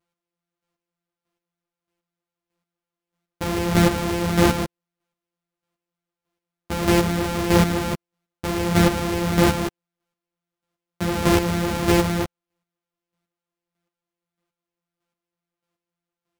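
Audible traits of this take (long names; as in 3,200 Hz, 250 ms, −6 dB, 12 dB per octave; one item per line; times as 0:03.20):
a buzz of ramps at a fixed pitch in blocks of 256 samples
chopped level 1.6 Hz, depth 60%, duty 20%
a shimmering, thickened sound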